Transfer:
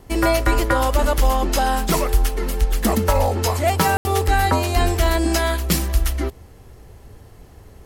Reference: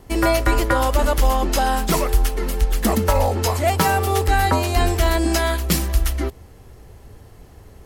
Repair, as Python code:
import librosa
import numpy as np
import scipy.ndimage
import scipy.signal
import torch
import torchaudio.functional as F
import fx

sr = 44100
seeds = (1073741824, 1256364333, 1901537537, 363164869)

y = fx.fix_ambience(x, sr, seeds[0], print_start_s=7.29, print_end_s=7.79, start_s=3.97, end_s=4.05)